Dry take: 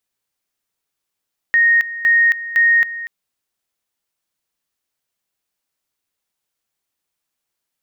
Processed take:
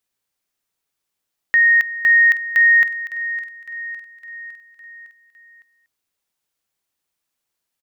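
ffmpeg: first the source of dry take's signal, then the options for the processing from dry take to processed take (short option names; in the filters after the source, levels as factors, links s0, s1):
-f lavfi -i "aevalsrc='pow(10,(-9.5-15*gte(mod(t,0.51),0.27))/20)*sin(2*PI*1860*t)':d=1.53:s=44100"
-af "aecho=1:1:558|1116|1674|2232|2790:0.168|0.094|0.0526|0.0295|0.0165"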